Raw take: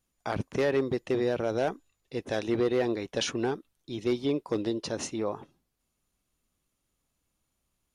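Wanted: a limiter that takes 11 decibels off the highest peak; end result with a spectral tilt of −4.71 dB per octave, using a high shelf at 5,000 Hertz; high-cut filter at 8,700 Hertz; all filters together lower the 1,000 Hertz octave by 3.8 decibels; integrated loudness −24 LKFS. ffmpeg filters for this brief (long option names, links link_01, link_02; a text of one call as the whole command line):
ffmpeg -i in.wav -af "lowpass=8700,equalizer=frequency=1000:width_type=o:gain=-6,highshelf=frequency=5000:gain=6.5,volume=13.5dB,alimiter=limit=-13.5dB:level=0:latency=1" out.wav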